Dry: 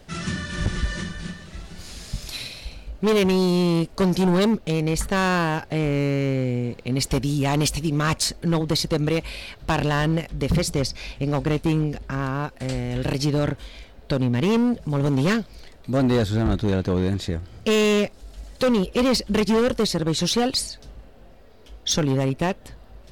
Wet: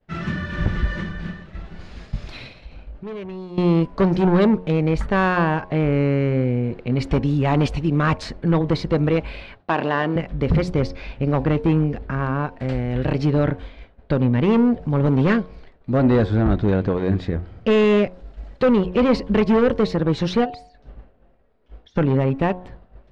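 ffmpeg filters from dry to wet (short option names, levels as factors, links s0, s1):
-filter_complex "[0:a]asettb=1/sr,asplit=3[s0][s1][s2];[s0]atrim=end=2.614[s3];[s1]atrim=start=2.61:end=3.58,asetpts=PTS-STARTPTS,afade=t=in:d=0.004:c=qsin,afade=t=out:st=0.966:d=0.004:c=qsin,acompressor=threshold=0.02:ratio=10:attack=3.2:release=140:knee=1:detection=peak[s4];[s2]atrim=start=3.576[s5];[s3][s4]acrossfade=d=0.004:c1=hsin:c2=qsin[s6];[s6][s5]acrossfade=d=0.004:c1=qsin:c2=hsin,asettb=1/sr,asplit=3[s7][s8][s9];[s7]atrim=end=9.604[s10];[s8]atrim=start=9.6:end=10.16,asetpts=PTS-STARTPTS,afade=t=in:d=0.004:c=qsin,afade=t=out:st=0.556:d=0.004:c=qsin,highpass=260,lowpass=7500[s11];[s9]atrim=start=10.156[s12];[s10][s11]acrossfade=d=0.004:c1=hsin:c2=qsin[s13];[s13][s12]acrossfade=d=0.004:c1=qsin:c2=hsin,asplit=3[s14][s15][s16];[s14]afade=t=out:st=20.44:d=0.02[s17];[s15]acompressor=threshold=0.0224:ratio=16:attack=3.2:release=140:knee=1:detection=peak,afade=t=in:st=20.44:d=0.02,afade=t=out:st=21.95:d=0.02[s18];[s16]afade=t=in:st=21.95:d=0.02[s19];[s17][s18][s19]amix=inputs=3:normalize=0,lowpass=2100,agate=range=0.0224:threshold=0.0141:ratio=3:detection=peak,bandreject=f=90.6:t=h:w=4,bandreject=f=181.2:t=h:w=4,bandreject=f=271.8:t=h:w=4,bandreject=f=362.4:t=h:w=4,bandreject=f=453:t=h:w=4,bandreject=f=543.6:t=h:w=4,bandreject=f=634.2:t=h:w=4,bandreject=f=724.8:t=h:w=4,bandreject=f=815.4:t=h:w=4,bandreject=f=906:t=h:w=4,bandreject=f=996.6:t=h:w=4,bandreject=f=1087.2:t=h:w=4,volume=1.5"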